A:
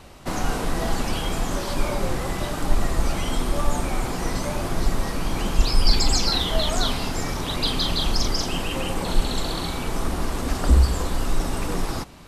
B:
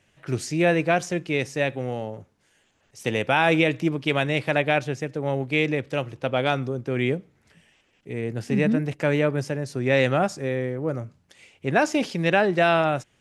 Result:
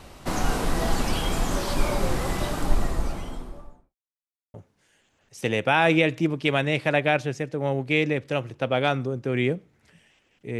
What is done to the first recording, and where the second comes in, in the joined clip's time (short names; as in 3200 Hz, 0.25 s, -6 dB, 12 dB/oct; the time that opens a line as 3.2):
A
2.33–3.95 studio fade out
3.95–4.54 mute
4.54 switch to B from 2.16 s